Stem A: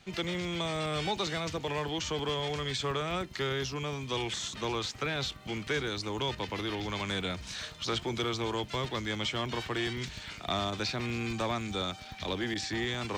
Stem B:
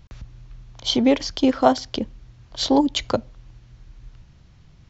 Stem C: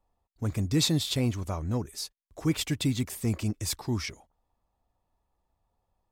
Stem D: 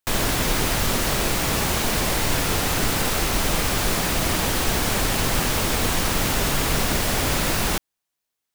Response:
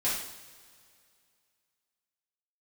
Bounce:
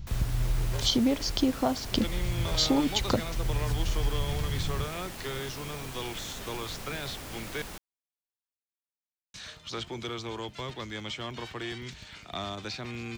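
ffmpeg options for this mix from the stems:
-filter_complex "[0:a]adelay=1850,volume=-4dB,asplit=3[link_01][link_02][link_03];[link_01]atrim=end=7.62,asetpts=PTS-STARTPTS,afade=type=out:start_time=7.616:duration=0.004:curve=hsin[link_04];[link_02]atrim=start=7.62:end=9.34,asetpts=PTS-STARTPTS,volume=0[link_05];[link_03]atrim=start=9.34,asetpts=PTS-STARTPTS,afade=type=in:duration=0.004:curve=hsin[link_06];[link_04][link_05][link_06]concat=n=3:v=0:a=1[link_07];[1:a]bass=frequency=250:gain=10,treble=frequency=4000:gain=5,dynaudnorm=framelen=160:gausssize=3:maxgain=10.5dB,volume=-0.5dB,asplit=2[link_08][link_09];[2:a]aeval=exprs='val(0)*sgn(sin(2*PI*250*n/s))':channel_layout=same,volume=-7dB[link_10];[3:a]volume=-19.5dB[link_11];[link_09]apad=whole_len=269601[link_12];[link_10][link_12]sidechaincompress=threshold=-23dB:ratio=8:attack=16:release=1450[link_13];[link_08][link_13]amix=inputs=2:normalize=0,acompressor=threshold=-24dB:ratio=5,volume=0dB[link_14];[link_07][link_11][link_14]amix=inputs=3:normalize=0"

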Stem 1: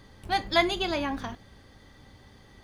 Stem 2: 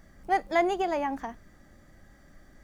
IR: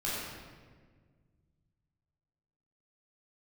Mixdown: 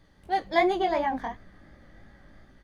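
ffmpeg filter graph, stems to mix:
-filter_complex "[0:a]bandreject=frequency=50:width_type=h:width=6,bandreject=frequency=100:width_type=h:width=6,volume=-7dB[link_01];[1:a]lowpass=frequency=2900:width=0.5412,lowpass=frequency=2900:width=1.3066,dynaudnorm=framelen=200:gausssize=5:maxgain=11dB,volume=-1,adelay=2.8,volume=-5dB[link_02];[link_01][link_02]amix=inputs=2:normalize=0,flanger=delay=15.5:depth=6.3:speed=2.8"

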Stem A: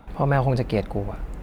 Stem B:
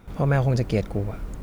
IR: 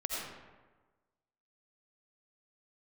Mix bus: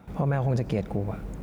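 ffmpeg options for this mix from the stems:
-filter_complex "[0:a]lowpass=frequency=2800:poles=1,volume=-6dB[link_01];[1:a]equalizer=frequency=180:width=3.4:gain=7,volume=-5.5dB,asplit=2[link_02][link_03];[link_03]volume=-19dB[link_04];[2:a]atrim=start_sample=2205[link_05];[link_04][link_05]afir=irnorm=-1:irlink=0[link_06];[link_01][link_02][link_06]amix=inputs=3:normalize=0,highpass=frequency=44:width=0.5412,highpass=frequency=44:width=1.3066,alimiter=limit=-16dB:level=0:latency=1:release=127"

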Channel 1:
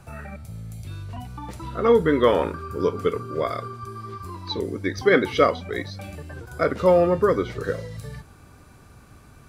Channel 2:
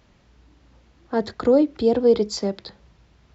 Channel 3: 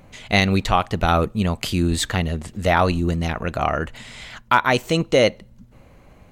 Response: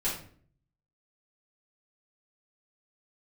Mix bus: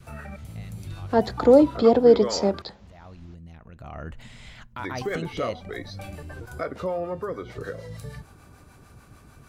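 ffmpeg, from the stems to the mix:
-filter_complex "[0:a]acompressor=threshold=-31dB:ratio=3,acrossover=split=530[link_01][link_02];[link_01]aeval=exprs='val(0)*(1-0.5/2+0.5/2*cos(2*PI*6.7*n/s))':channel_layout=same[link_03];[link_02]aeval=exprs='val(0)*(1-0.5/2-0.5/2*cos(2*PI*6.7*n/s))':channel_layout=same[link_04];[link_03][link_04]amix=inputs=2:normalize=0,volume=1dB,asplit=3[link_05][link_06][link_07];[link_05]atrim=end=2.62,asetpts=PTS-STARTPTS,afade=type=out:start_time=2.616:duration=0.004:curve=hsin[link_08];[link_06]atrim=start=2.62:end=4.79,asetpts=PTS-STARTPTS,volume=0[link_09];[link_07]atrim=start=4.79,asetpts=PTS-STARTPTS,afade=type=in:duration=0.004:curve=hsin[link_10];[link_08][link_09][link_10]concat=n=3:v=0:a=1[link_11];[1:a]volume=0.5dB,asplit=2[link_12][link_13];[2:a]bass=frequency=250:gain=9,treble=frequency=4000:gain=-1,acompressor=threshold=-18dB:ratio=6,alimiter=limit=-14.5dB:level=0:latency=1:release=36,adelay=250,volume=-9.5dB,afade=type=in:start_time=3.71:duration=0.46:silence=0.251189[link_14];[link_13]apad=whole_len=289682[link_15];[link_14][link_15]sidechaincompress=threshold=-35dB:ratio=8:attack=16:release=576[link_16];[link_11][link_12][link_16]amix=inputs=3:normalize=0,adynamicequalizer=threshold=0.00794:dfrequency=730:dqfactor=2:tfrequency=730:tqfactor=2:attack=5:release=100:ratio=0.375:range=3:mode=boostabove:tftype=bell"

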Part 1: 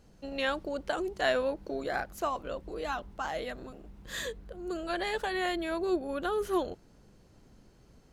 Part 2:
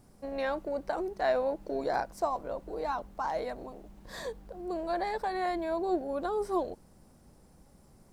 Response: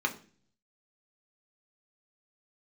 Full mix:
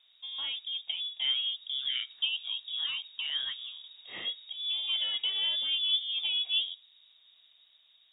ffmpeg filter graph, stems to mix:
-filter_complex "[0:a]highpass=310,volume=-4.5dB,asplit=2[link_01][link_02];[link_02]volume=-21.5dB[link_03];[1:a]volume=-6dB,asplit=2[link_04][link_05];[link_05]apad=whole_len=358099[link_06];[link_01][link_06]sidechaincompress=threshold=-39dB:ratio=8:attack=7.6:release=852[link_07];[2:a]atrim=start_sample=2205[link_08];[link_03][link_08]afir=irnorm=-1:irlink=0[link_09];[link_07][link_04][link_09]amix=inputs=3:normalize=0,dynaudnorm=framelen=490:gausssize=7:maxgain=4.5dB,lowpass=frequency=3200:width_type=q:width=0.5098,lowpass=frequency=3200:width_type=q:width=0.6013,lowpass=frequency=3200:width_type=q:width=0.9,lowpass=frequency=3200:width_type=q:width=2.563,afreqshift=-3800,highpass=44"

